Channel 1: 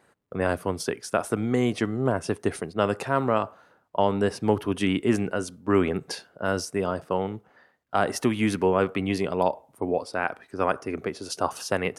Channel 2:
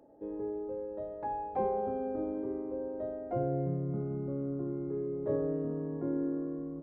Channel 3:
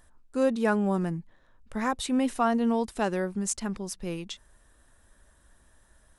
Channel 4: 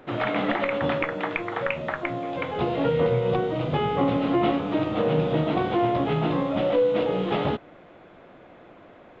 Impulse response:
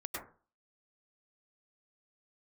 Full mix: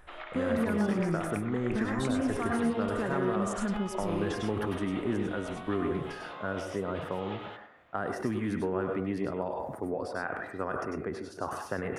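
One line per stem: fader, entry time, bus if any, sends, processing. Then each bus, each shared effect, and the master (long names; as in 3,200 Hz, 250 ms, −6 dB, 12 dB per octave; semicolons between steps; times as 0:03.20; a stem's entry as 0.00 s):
−6.5 dB, 0.00 s, bus A, send −10.5 dB, level that may fall only so fast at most 58 dB per second
muted
+1.0 dB, 0.00 s, bus A, send −5 dB, brickwall limiter −23 dBFS, peak gain reduction 11 dB
−11.0 dB, 0.00 s, no bus, send −6 dB, high-pass filter 870 Hz 12 dB per octave; downward compressor, threshold −32 dBFS, peak gain reduction 10 dB
bus A: 0.0 dB, Butterworth low-pass 2,100 Hz 72 dB per octave; downward compressor, threshold −28 dBFS, peak gain reduction 7.5 dB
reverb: on, RT60 0.40 s, pre-delay 92 ms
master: no processing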